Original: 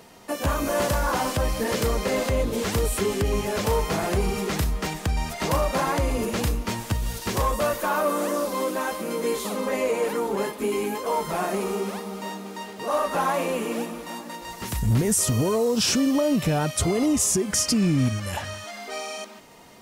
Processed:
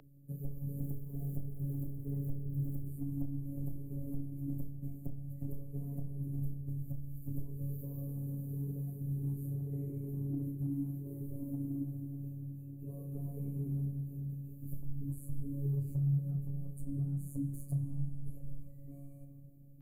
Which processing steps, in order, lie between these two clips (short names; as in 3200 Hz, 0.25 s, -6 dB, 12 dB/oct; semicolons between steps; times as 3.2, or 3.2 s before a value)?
0.78–2.89 zero-crossing step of -33 dBFS; inverse Chebyshev band-stop 900–5900 Hz, stop band 60 dB; compressor 5:1, threshold -31 dBFS, peak gain reduction 12 dB; flutter echo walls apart 5.1 m, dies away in 0.22 s; reverb RT60 4.6 s, pre-delay 59 ms, DRR 10 dB; frequency shift -110 Hz; robotiser 140 Hz; three-band isolator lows -12 dB, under 420 Hz, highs -23 dB, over 5200 Hz; notches 60/120/180/240/300/360/420 Hz; gain +11 dB